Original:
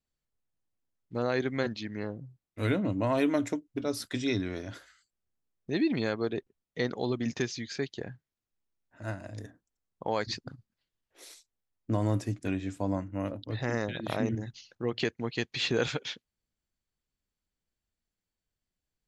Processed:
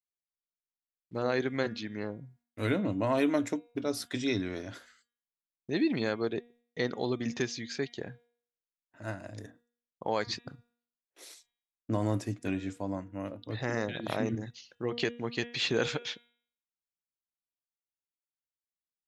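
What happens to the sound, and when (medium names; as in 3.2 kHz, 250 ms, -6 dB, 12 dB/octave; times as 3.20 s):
12.73–13.44 s: gain -3.5 dB
whole clip: gate with hold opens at -54 dBFS; bass shelf 69 Hz -11.5 dB; de-hum 238.2 Hz, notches 16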